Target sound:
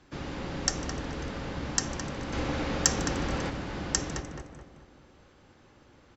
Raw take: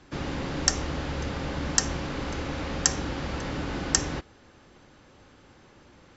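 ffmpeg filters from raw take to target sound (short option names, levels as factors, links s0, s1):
-filter_complex "[0:a]asplit=2[s0][s1];[s1]adelay=214,lowpass=f=2000:p=1,volume=0.596,asplit=2[s2][s3];[s3]adelay=214,lowpass=f=2000:p=1,volume=0.47,asplit=2[s4][s5];[s5]adelay=214,lowpass=f=2000:p=1,volume=0.47,asplit=2[s6][s7];[s7]adelay=214,lowpass=f=2000:p=1,volume=0.47,asplit=2[s8][s9];[s9]adelay=214,lowpass=f=2000:p=1,volume=0.47,asplit=2[s10][s11];[s11]adelay=214,lowpass=f=2000:p=1,volume=0.47[s12];[s2][s4][s6][s8][s10][s12]amix=inputs=6:normalize=0[s13];[s0][s13]amix=inputs=2:normalize=0,asettb=1/sr,asplit=3[s14][s15][s16];[s14]atrim=end=2.334[s17];[s15]atrim=start=2.33:end=3.5,asetpts=PTS-STARTPTS,afade=t=in:d=0.004:c=qsin,afade=t=out:st=1.166:d=0.004:c=qsin,acontrast=31[s18];[s16]atrim=start=3.496[s19];[s17][s18]acrossfade=d=0.004:c1=hsin:c2=qsin[s20];[s20][s19]acrossfade=d=0.004:c1=qsin:c2=hsin,asplit=2[s21][s22];[s22]asplit=4[s23][s24][s25][s26];[s23]adelay=150,afreqshift=110,volume=0.0891[s27];[s24]adelay=300,afreqshift=220,volume=0.0479[s28];[s25]adelay=450,afreqshift=330,volume=0.026[s29];[s26]adelay=600,afreqshift=440,volume=0.014[s30];[s27][s28][s29][s30]amix=inputs=4:normalize=0[s31];[s21][s31]amix=inputs=2:normalize=0,volume=0.562"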